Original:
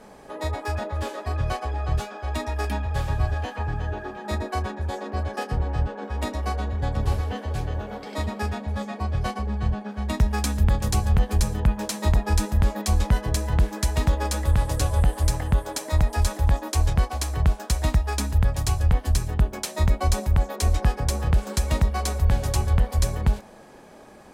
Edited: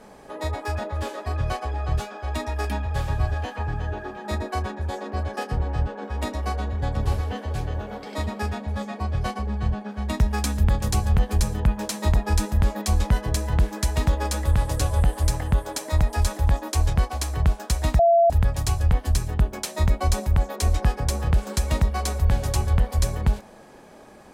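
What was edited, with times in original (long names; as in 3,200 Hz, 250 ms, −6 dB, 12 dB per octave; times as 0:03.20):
0:17.99–0:18.30: beep over 679 Hz −13 dBFS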